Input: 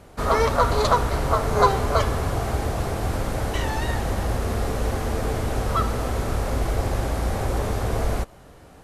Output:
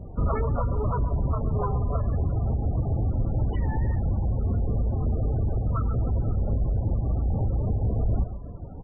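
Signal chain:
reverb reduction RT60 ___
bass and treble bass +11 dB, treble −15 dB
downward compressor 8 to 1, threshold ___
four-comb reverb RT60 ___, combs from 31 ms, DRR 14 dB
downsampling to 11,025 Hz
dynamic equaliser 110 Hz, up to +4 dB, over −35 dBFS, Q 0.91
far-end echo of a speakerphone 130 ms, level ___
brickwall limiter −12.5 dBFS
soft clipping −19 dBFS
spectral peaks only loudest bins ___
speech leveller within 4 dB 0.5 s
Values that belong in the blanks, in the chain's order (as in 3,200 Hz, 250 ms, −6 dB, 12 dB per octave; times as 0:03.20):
0.54 s, −18 dBFS, 2.1 s, −10 dB, 32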